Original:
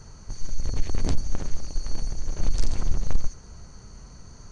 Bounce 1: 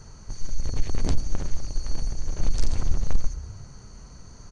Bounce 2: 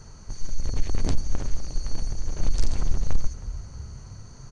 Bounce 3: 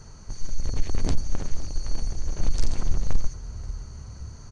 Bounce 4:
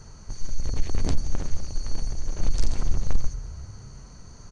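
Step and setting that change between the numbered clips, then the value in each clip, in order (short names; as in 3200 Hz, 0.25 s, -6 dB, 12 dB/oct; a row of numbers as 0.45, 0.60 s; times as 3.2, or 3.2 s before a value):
frequency-shifting echo, time: 0.109, 0.316, 0.529, 0.175 s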